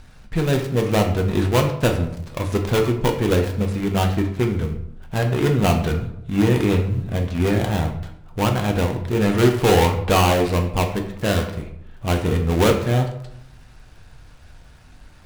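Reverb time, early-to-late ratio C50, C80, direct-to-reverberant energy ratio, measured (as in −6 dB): 0.80 s, 8.0 dB, 11.5 dB, 3.0 dB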